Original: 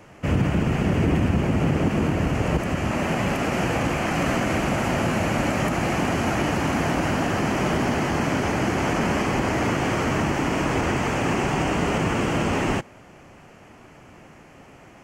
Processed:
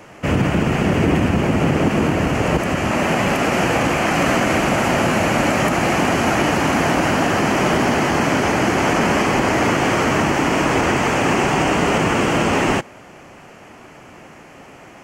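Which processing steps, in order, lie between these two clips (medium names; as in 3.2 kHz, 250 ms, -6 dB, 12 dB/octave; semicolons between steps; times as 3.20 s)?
bass shelf 160 Hz -8.5 dB; trim +7.5 dB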